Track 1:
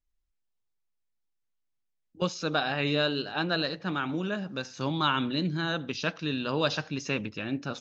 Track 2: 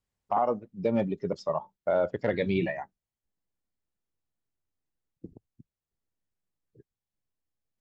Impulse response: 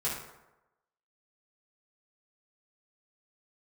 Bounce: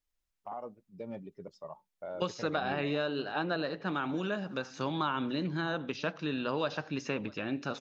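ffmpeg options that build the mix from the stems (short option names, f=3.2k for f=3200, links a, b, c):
-filter_complex "[0:a]lowshelf=f=210:g=-9.5,acrossover=split=1200|2500[a][b][c];[a]acompressor=threshold=-32dB:ratio=4[d];[b]acompressor=threshold=-45dB:ratio=4[e];[c]acompressor=threshold=-52dB:ratio=4[f];[d][e][f]amix=inputs=3:normalize=0,volume=2.5dB,asplit=2[g][h];[h]volume=-23.5dB[i];[1:a]adelay=150,volume=-15.5dB[j];[i]aecho=0:1:646:1[k];[g][j][k]amix=inputs=3:normalize=0"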